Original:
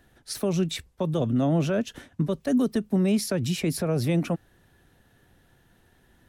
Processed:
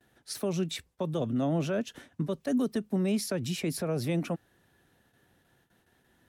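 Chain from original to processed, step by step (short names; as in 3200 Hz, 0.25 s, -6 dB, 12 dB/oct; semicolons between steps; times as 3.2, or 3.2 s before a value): gate with hold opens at -51 dBFS; HPF 140 Hz 6 dB/oct; gain -4 dB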